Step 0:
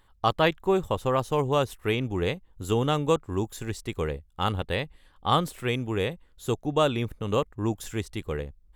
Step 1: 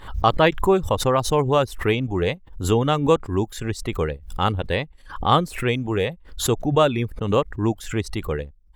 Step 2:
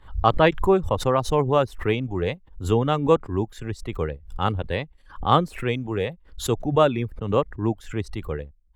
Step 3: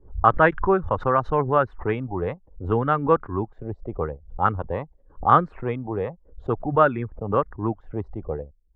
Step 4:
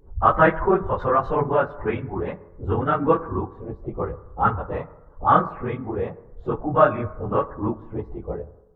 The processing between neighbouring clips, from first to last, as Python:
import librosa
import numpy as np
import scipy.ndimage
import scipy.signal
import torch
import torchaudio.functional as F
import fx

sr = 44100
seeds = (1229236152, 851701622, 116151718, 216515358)

y1 = fx.dereverb_blind(x, sr, rt60_s=0.6)
y1 = fx.high_shelf(y1, sr, hz=6000.0, db=-10.5)
y1 = fx.pre_swell(y1, sr, db_per_s=110.0)
y1 = y1 * 10.0 ** (6.0 / 20.0)
y2 = fx.high_shelf(y1, sr, hz=3800.0, db=-8.5)
y2 = fx.band_widen(y2, sr, depth_pct=40)
y2 = y2 * 10.0 ** (-1.5 / 20.0)
y3 = fx.envelope_lowpass(y2, sr, base_hz=380.0, top_hz=1500.0, q=3.3, full_db=-18.5, direction='up')
y3 = y3 * 10.0 ** (-2.5 / 20.0)
y4 = fx.phase_scramble(y3, sr, seeds[0], window_ms=50)
y4 = fx.rev_fdn(y4, sr, rt60_s=1.1, lf_ratio=1.0, hf_ratio=0.35, size_ms=94.0, drr_db=13.5)